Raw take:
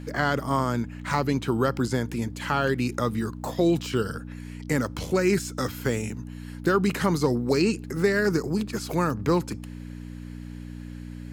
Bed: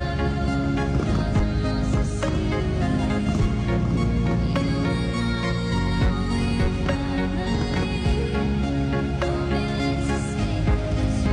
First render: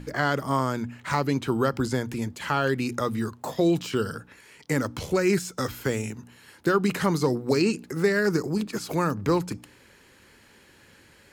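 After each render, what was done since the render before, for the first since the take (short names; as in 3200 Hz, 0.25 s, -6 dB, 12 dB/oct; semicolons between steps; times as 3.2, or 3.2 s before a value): de-hum 60 Hz, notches 5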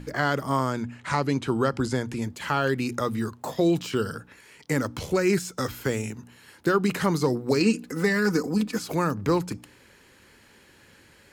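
0.7–2.24 LPF 11000 Hz 24 dB/oct; 7.6–8.82 comb 4 ms, depth 72%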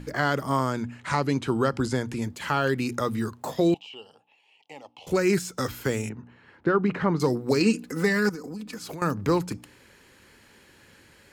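3.74–5.07 double band-pass 1500 Hz, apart 1.8 oct; 6.09–7.2 LPF 2000 Hz; 8.29–9.02 compressor 8:1, threshold -33 dBFS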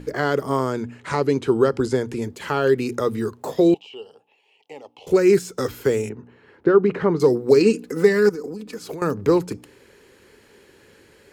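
bell 420 Hz +11.5 dB 0.65 oct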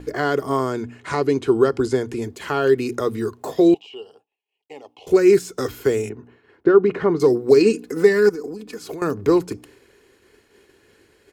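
expander -47 dBFS; comb 2.8 ms, depth 31%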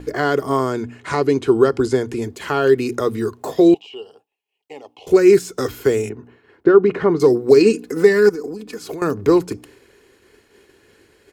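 gain +2.5 dB; limiter -1 dBFS, peak gain reduction 1 dB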